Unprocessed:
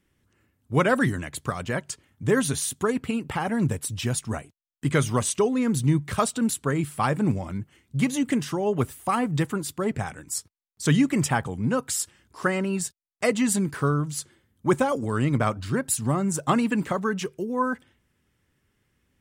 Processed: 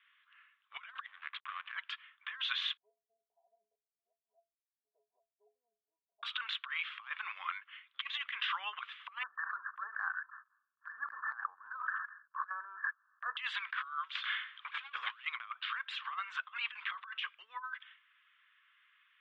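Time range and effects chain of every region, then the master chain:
0:01.06–0:01.73: spectral tilt −3 dB per octave + downward compressor 8 to 1, threshold −31 dBFS + slack as between gear wheels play −37 dBFS
0:02.77–0:06.23: Butterworth low-pass 720 Hz 96 dB per octave + stiff-string resonator 200 Hz, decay 0.27 s, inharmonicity 0.03
0:09.23–0:13.37: linear-phase brick-wall low-pass 1,800 Hz + noise gate −56 dBFS, range −11 dB + level that may fall only so fast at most 98 dB per second
0:14.15–0:15.25: high-pass filter 370 Hz + downward compressor 3 to 1, threshold −25 dBFS + mid-hump overdrive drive 27 dB, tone 6,900 Hz, clips at −15 dBFS
whole clip: Chebyshev band-pass filter 1,100–3,500 Hz, order 4; dynamic equaliser 1,400 Hz, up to −7 dB, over −41 dBFS, Q 0.76; compressor whose output falls as the input rises −43 dBFS, ratio −0.5; level +4.5 dB

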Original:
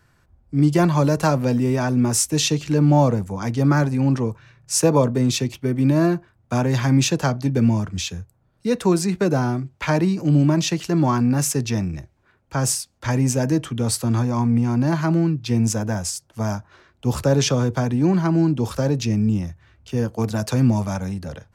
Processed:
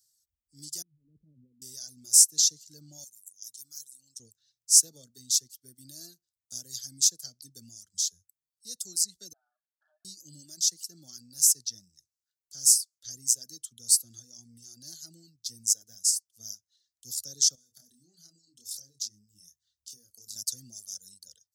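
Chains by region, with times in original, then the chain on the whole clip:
0:00.82–0:01.62: inverse Chebyshev low-pass filter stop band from 1,500 Hz, stop band 70 dB + compressor whose output falls as the input rises −24 dBFS
0:03.04–0:04.20: first-order pre-emphasis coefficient 0.9 + notch filter 4,700 Hz, Q 7.1
0:09.33–0:10.05: variable-slope delta modulation 16 kbit/s + linear-phase brick-wall band-pass 580–1,800 Hz + downward compressor 2.5 to 1, threshold −33 dBFS
0:17.55–0:20.36: downward compressor 12 to 1, threshold −26 dBFS + double-tracking delay 29 ms −5 dB
whole clip: reverb reduction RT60 1.1 s; inverse Chebyshev high-pass filter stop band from 2,600 Hz, stop band 40 dB; level +4.5 dB

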